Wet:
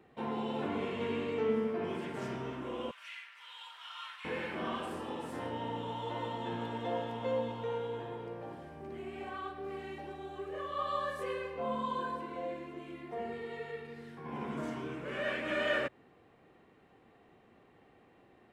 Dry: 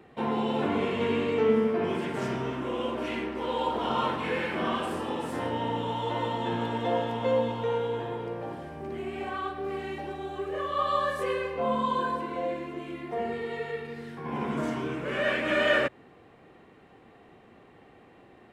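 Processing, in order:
0:02.91–0:04.25: high-pass filter 1,500 Hz 24 dB per octave
level −8 dB

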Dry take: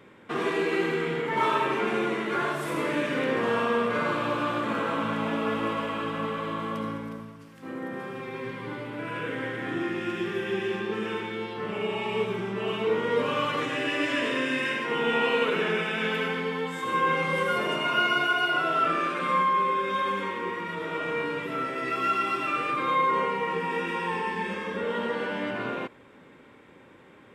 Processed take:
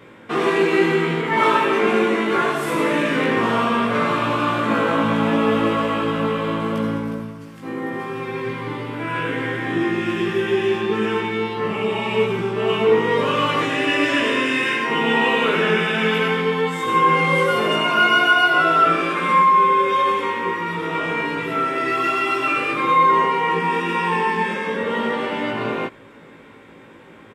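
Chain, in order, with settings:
double-tracking delay 18 ms −2 dB
level +6 dB

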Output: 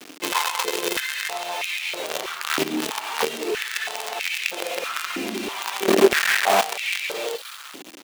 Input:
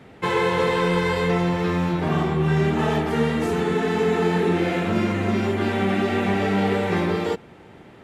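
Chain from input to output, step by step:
flat-topped bell 3,300 Hz +13.5 dB 1.2 octaves
double-tracking delay 26 ms −12 dB
delay with a high-pass on its return 66 ms, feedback 77%, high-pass 4,600 Hz, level −4 dB
reverb reduction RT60 0.53 s
0:05.88–0:06.61: spectral tilt −4 dB per octave
log-companded quantiser 2 bits
boost into a limiter +4.5 dB
high-pass on a step sequencer 3.1 Hz 290–2,300 Hz
level −10 dB

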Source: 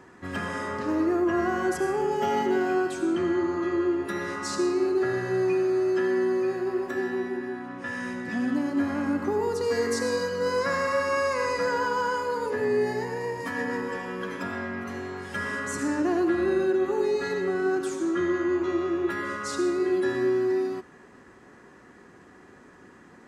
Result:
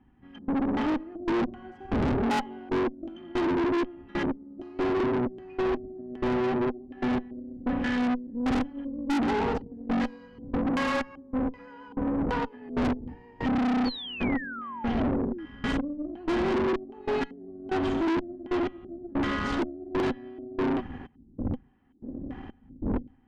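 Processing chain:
wind on the microphone 83 Hz −30 dBFS
auto-filter low-pass square 1.3 Hz 310–2,700 Hz
gate pattern "...xxx..x" 94 BPM −24 dB
hollow resonant body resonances 250/790/3,100 Hz, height 18 dB, ringing for 50 ms
tube saturation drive 26 dB, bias 0.7
sound drawn into the spectrogram fall, 0:13.85–0:15.46, 300–4,600 Hz −40 dBFS
level +2 dB

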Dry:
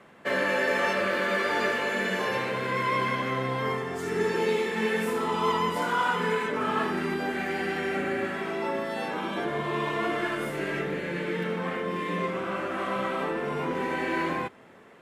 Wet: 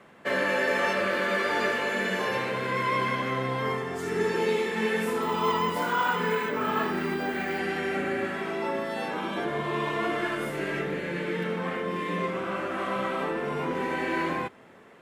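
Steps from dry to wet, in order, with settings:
0:05.22–0:07.59: bad sample-rate conversion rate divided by 2×, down none, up hold

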